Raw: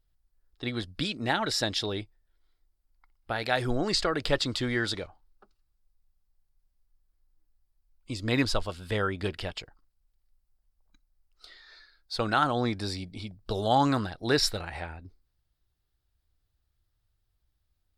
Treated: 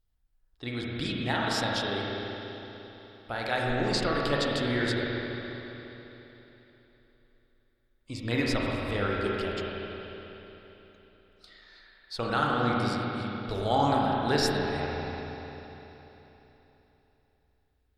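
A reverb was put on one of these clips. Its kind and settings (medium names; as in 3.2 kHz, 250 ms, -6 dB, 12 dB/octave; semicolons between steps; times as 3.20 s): spring tank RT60 3.6 s, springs 34/49 ms, chirp 80 ms, DRR -3.5 dB; trim -4 dB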